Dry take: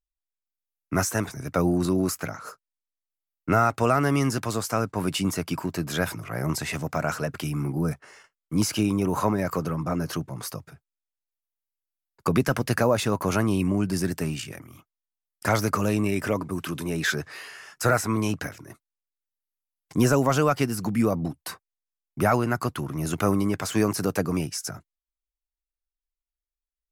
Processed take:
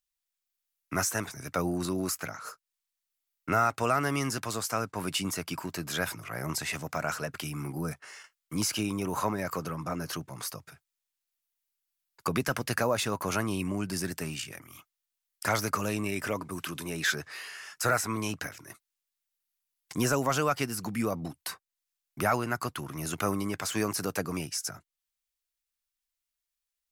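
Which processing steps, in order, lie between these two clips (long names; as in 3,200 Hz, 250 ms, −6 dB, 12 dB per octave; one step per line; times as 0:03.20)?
tilt shelving filter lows −4 dB, about 780 Hz
one half of a high-frequency compander encoder only
level −5 dB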